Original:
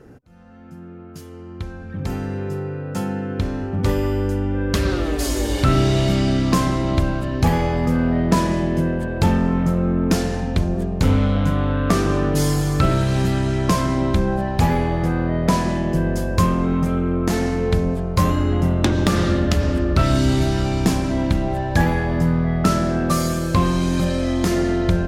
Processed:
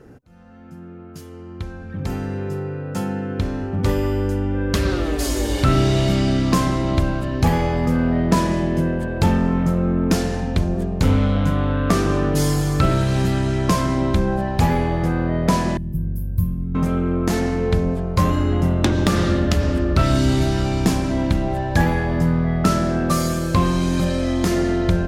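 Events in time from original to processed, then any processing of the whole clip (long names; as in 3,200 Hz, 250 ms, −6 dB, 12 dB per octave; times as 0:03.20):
0:15.77–0:16.75: drawn EQ curve 130 Hz 0 dB, 660 Hz −30 dB, 7,300 Hz −26 dB, 13,000 Hz +4 dB
0:17.40–0:18.33: high-shelf EQ 5,100 Hz −4 dB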